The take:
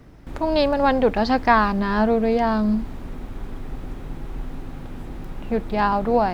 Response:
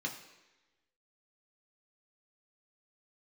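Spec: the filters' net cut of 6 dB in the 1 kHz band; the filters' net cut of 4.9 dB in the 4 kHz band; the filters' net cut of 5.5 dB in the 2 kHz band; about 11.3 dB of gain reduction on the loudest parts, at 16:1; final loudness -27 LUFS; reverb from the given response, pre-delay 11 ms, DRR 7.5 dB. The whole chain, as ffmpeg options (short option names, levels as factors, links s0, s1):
-filter_complex "[0:a]equalizer=f=1000:t=o:g=-7,equalizer=f=2000:t=o:g=-3.5,equalizer=f=4000:t=o:g=-4.5,acompressor=threshold=0.0501:ratio=16,asplit=2[s0][s1];[1:a]atrim=start_sample=2205,adelay=11[s2];[s1][s2]afir=irnorm=-1:irlink=0,volume=0.316[s3];[s0][s3]amix=inputs=2:normalize=0,volume=2"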